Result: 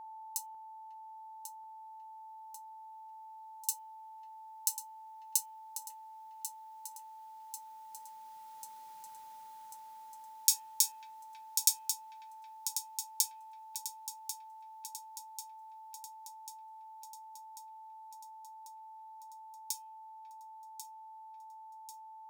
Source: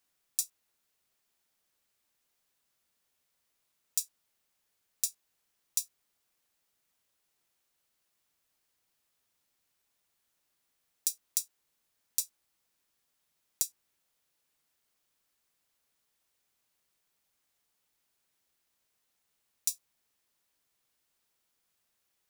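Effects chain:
source passing by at 0:08.98, 25 m/s, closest 18 metres
frequency shifter +65 Hz
parametric band 820 Hz +8.5 dB 0.73 octaves
hum removal 112.6 Hz, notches 28
steady tone 880 Hz −61 dBFS
on a send: delay that swaps between a low-pass and a high-pass 546 ms, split 2,200 Hz, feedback 76%, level −8 dB
on the sum: boost into a limiter +16.5 dB
level −1 dB

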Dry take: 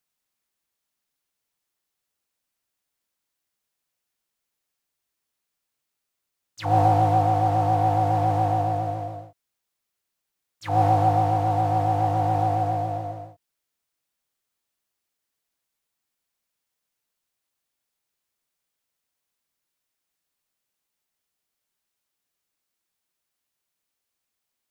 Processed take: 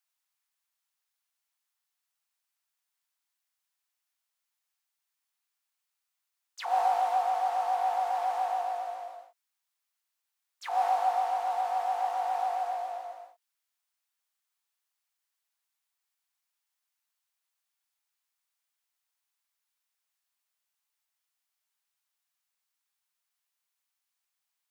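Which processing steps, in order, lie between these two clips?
high-pass filter 760 Hz 24 dB per octave
level −2.5 dB

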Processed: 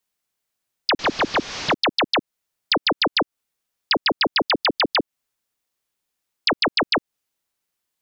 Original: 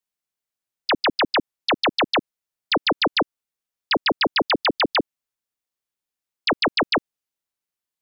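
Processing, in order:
0:00.99–0:01.74: linear delta modulator 32 kbit/s, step −31 dBFS
downward compressor, threshold −26 dBFS, peak gain reduction 8.5 dB
level +8 dB

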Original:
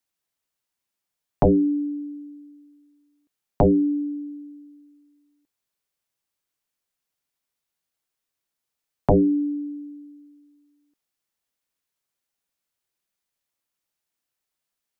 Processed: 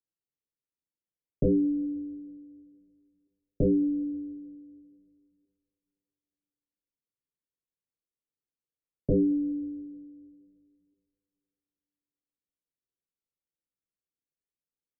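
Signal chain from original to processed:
elliptic low-pass filter 520 Hz, stop band 40 dB
coupled-rooms reverb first 0.26 s, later 2.6 s, from −17 dB, DRR 13.5 dB
level −6 dB

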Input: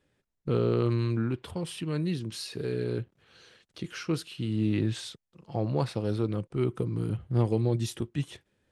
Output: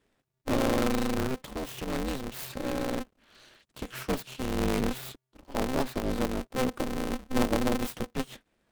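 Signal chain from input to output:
stylus tracing distortion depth 0.35 ms
dynamic equaliser 180 Hz, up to −4 dB, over −43 dBFS, Q 2.5
ring modulator with a square carrier 130 Hz

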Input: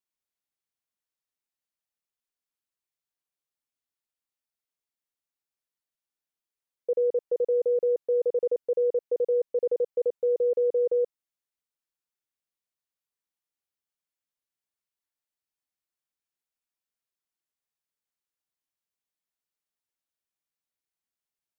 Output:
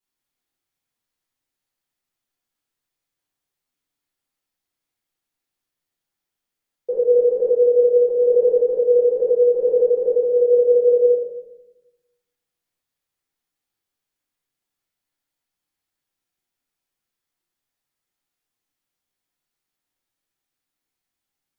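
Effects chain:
rectangular room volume 350 cubic metres, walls mixed, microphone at 4 metres
level −1.5 dB

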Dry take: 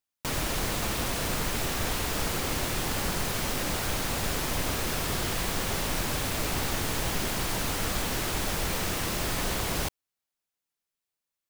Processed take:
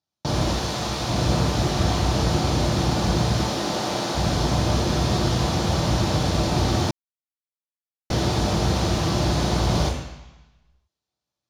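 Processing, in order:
0:00.56–0:01.09: low-shelf EQ 500 Hz −9.5 dB
0:03.43–0:04.14: high-pass filter 250 Hz 12 dB per octave
high-frequency loss of the air 58 metres
convolution reverb RT60 1.0 s, pre-delay 3 ms, DRR −0.5 dB
0:06.91–0:08.10: silence
level +1.5 dB

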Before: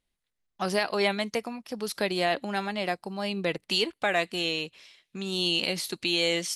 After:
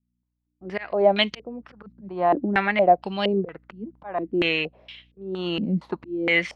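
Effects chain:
volume swells 405 ms
mains hum 60 Hz, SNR 31 dB
noise gate with hold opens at −53 dBFS
low-pass on a step sequencer 4.3 Hz 220–3,000 Hz
level +5.5 dB

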